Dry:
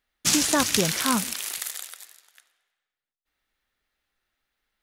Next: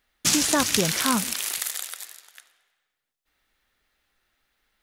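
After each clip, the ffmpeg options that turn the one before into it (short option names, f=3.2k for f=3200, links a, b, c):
-af "acompressor=threshold=-37dB:ratio=1.5,volume=7dB"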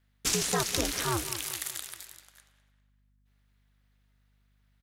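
-filter_complex "[0:a]aeval=exprs='val(0)*sin(2*PI*120*n/s)':c=same,aeval=exprs='val(0)+0.000562*(sin(2*PI*50*n/s)+sin(2*PI*2*50*n/s)/2+sin(2*PI*3*50*n/s)/3+sin(2*PI*4*50*n/s)/4+sin(2*PI*5*50*n/s)/5)':c=same,asplit=2[a][b];[b]adelay=201,lowpass=f=3k:p=1,volume=-13dB,asplit=2[c][d];[d]adelay=201,lowpass=f=3k:p=1,volume=0.46,asplit=2[e][f];[f]adelay=201,lowpass=f=3k:p=1,volume=0.46,asplit=2[g][h];[h]adelay=201,lowpass=f=3k:p=1,volume=0.46,asplit=2[i][j];[j]adelay=201,lowpass=f=3k:p=1,volume=0.46[k];[a][c][e][g][i][k]amix=inputs=6:normalize=0,volume=-4dB"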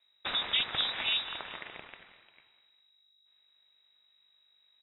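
-af "lowpass=f=3.3k:t=q:w=0.5098,lowpass=f=3.3k:t=q:w=0.6013,lowpass=f=3.3k:t=q:w=0.9,lowpass=f=3.3k:t=q:w=2.563,afreqshift=-3900"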